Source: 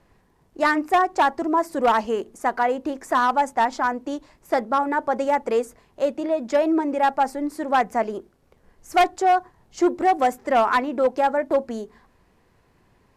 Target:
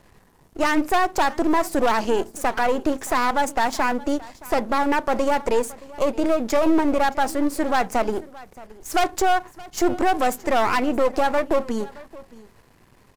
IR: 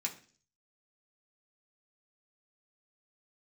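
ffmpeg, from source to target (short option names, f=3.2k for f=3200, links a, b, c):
-af "aeval=exprs='if(lt(val(0),0),0.251*val(0),val(0))':c=same,highshelf=f=5.6k:g=7,alimiter=limit=-18.5dB:level=0:latency=1:release=52,aecho=1:1:622:0.0944,volume=8.5dB"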